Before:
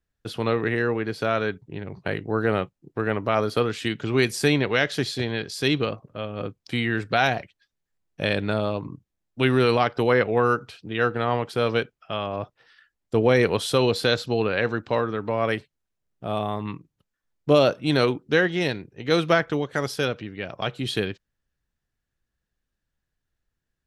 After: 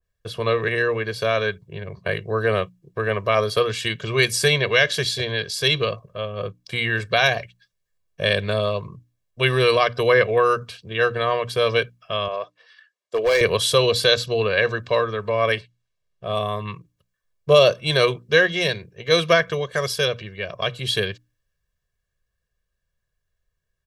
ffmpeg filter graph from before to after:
-filter_complex "[0:a]asettb=1/sr,asplit=3[a][b][c];[a]atrim=end=12.284[d];[b]atrim=start=12.28:end=13.41,asetpts=PTS-STARTPTS,afade=t=in:d=0.004:c=qsin,afade=t=out:st=1.126:d=0.004:c=qsin,highpass=410,lowpass=7.5k,asoftclip=type=hard:threshold=-17.5dB[e];[c]atrim=start=13.406[f];[d][e]acrossfade=d=0.004:c1=hsin:c2=qsin[g];[g][f]acrossfade=d=0.004:c1=qsin:c2=hsin,asettb=1/sr,asplit=3[h][i][j];[h]atrim=end=15.524[k];[i]atrim=start=15.52:end=16.35,asetpts=PTS-STARTPTS,afade=t=in:d=0.004:c=qsin,afade=t=out:st=0.826:d=0.004:c=qsin,lowpass=3.5k,aemphasis=mode=production:type=75fm[l];[j]atrim=start=16.346[m];[k][l]acrossfade=d=0.004:c1=hsin:c2=qsin[n];[n][m]acrossfade=d=0.004:c1=qsin:c2=hsin,bandreject=f=60:t=h:w=6,bandreject=f=120:t=h:w=6,bandreject=f=180:t=h:w=6,bandreject=f=240:t=h:w=6,bandreject=f=300:t=h:w=6,aecho=1:1:1.8:0.95,adynamicequalizer=threshold=0.0251:dfrequency=1800:dqfactor=0.7:tfrequency=1800:tqfactor=0.7:attack=5:release=100:ratio=0.375:range=3:mode=boostabove:tftype=highshelf,volume=-1dB"

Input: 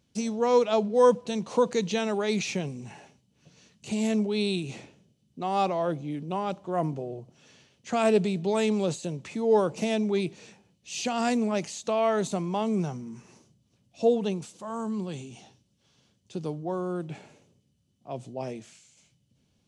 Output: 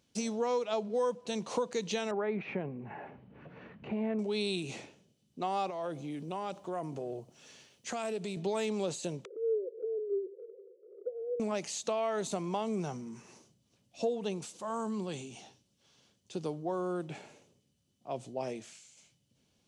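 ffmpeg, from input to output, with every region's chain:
-filter_complex "[0:a]asettb=1/sr,asplit=3[a][b][c];[a]atrim=end=2.114[d];[b]atrim=start=2.11:end=4.19,asetpts=PTS-STARTPTS,afade=t=in:d=0.004:c=qsin,afade=t=out:st=2.076:d=0.004:c=qsin,lowpass=f=1.9k:w=0.5412,lowpass=f=1.9k:w=1.3066,acompressor=mode=upward:threshold=-34dB:ratio=2.5:attack=3.2:release=140:knee=2.83:detection=peak[e];[c]atrim=start=4.186[f];[d][e]acrossfade=d=0.004:c1=hsin:c2=qsin[g];[g][f]acrossfade=d=0.004:c1=qsin:c2=hsin,asettb=1/sr,asplit=3[h][i][j];[h]atrim=end=5.704[k];[i]atrim=start=5.7:end=8.37,asetpts=PTS-STARTPTS,afade=t=in:d=0.004:c=qsin,afade=t=out:st=2.666:d=0.004:c=qsin,highshelf=f=8.5k:g=9,acompressor=threshold=-32dB:ratio=4:attack=3.2:release=140:knee=1:detection=peak[l];[j]atrim=start=8.366[m];[k][l]acrossfade=d=0.004:c1=hsin:c2=qsin[n];[n][m]acrossfade=d=0.004:c1=qsin:c2=hsin,asettb=1/sr,asplit=3[o][p][q];[o]atrim=end=9.254[r];[p]atrim=start=9.25:end=11.4,asetpts=PTS-STARTPTS,afade=t=in:d=0.004:c=qsin,afade=t=out:st=2.146:d=0.004:c=qsin,asuperpass=centerf=440:order=8:qfactor=3.1,acompressor=mode=upward:threshold=-35dB:ratio=2.5:attack=3.2:release=140:knee=2.83:detection=peak[s];[q]atrim=start=11.396[t];[r][s]acrossfade=d=0.004:c1=hsin:c2=qsin[u];[u][t]acrossfade=d=0.004:c1=qsin:c2=hsin,deesser=0.65,bass=f=250:g=-7,treble=f=4k:g=1,acompressor=threshold=-30dB:ratio=4"

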